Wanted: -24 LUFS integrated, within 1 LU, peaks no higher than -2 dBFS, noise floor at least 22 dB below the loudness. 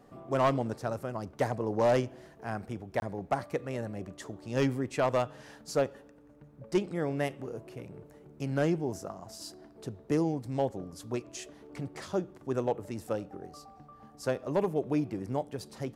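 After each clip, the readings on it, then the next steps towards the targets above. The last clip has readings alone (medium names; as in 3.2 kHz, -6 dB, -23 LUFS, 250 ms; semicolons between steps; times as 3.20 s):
clipped samples 0.3%; clipping level -19.0 dBFS; dropouts 1; longest dropout 21 ms; loudness -33.0 LUFS; peak level -19.0 dBFS; loudness target -24.0 LUFS
-> clip repair -19 dBFS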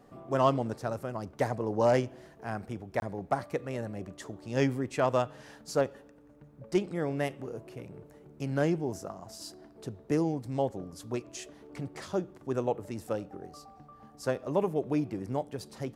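clipped samples 0.0%; dropouts 1; longest dropout 21 ms
-> interpolate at 3.00 s, 21 ms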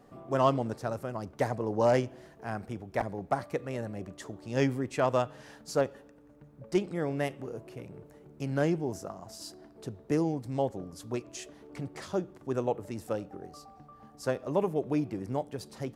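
dropouts 0; loudness -32.5 LUFS; peak level -11.0 dBFS; loudness target -24.0 LUFS
-> trim +8.5 dB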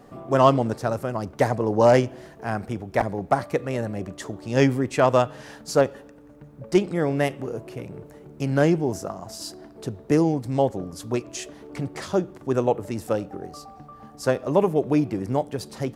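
loudness -24.0 LUFS; peak level -2.5 dBFS; noise floor -47 dBFS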